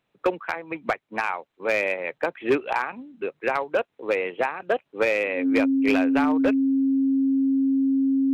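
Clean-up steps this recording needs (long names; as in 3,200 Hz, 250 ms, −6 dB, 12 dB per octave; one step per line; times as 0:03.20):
clipped peaks rebuilt −14 dBFS
notch filter 270 Hz, Q 30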